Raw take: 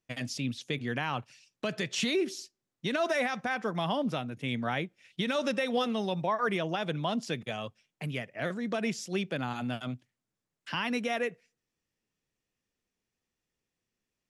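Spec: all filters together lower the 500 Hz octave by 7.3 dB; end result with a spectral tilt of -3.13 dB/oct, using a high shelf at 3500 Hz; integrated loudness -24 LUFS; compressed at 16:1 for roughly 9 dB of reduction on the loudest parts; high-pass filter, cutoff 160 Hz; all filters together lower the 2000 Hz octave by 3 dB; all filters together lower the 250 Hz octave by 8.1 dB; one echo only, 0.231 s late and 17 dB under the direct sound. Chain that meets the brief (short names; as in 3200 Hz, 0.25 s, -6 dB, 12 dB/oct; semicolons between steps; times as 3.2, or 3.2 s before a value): HPF 160 Hz; bell 250 Hz -7 dB; bell 500 Hz -7.5 dB; bell 2000 Hz -5 dB; high shelf 3500 Hz +5 dB; compressor 16:1, threshold -37 dBFS; echo 0.231 s -17 dB; gain +18 dB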